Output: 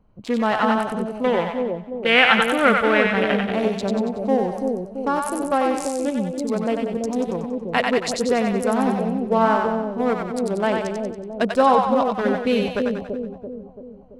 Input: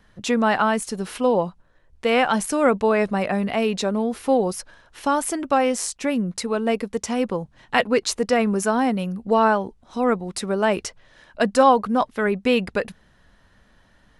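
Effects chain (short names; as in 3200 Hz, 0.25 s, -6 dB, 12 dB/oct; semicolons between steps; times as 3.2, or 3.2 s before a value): Wiener smoothing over 25 samples; 1.24–3.52 band shelf 2200 Hz +11 dB; split-band echo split 630 Hz, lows 0.336 s, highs 93 ms, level -3 dB; gain -1 dB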